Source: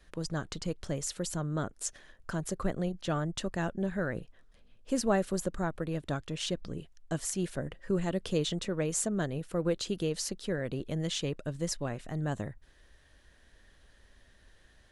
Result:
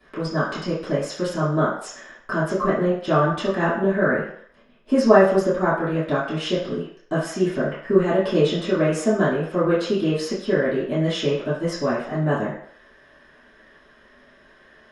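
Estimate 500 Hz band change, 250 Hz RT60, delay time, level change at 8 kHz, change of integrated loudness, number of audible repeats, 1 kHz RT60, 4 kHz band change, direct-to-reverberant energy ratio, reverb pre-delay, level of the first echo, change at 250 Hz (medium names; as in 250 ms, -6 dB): +14.5 dB, 0.45 s, no echo, -3.0 dB, +12.0 dB, no echo, 0.65 s, +6.5 dB, -14.0 dB, 3 ms, no echo, +11.0 dB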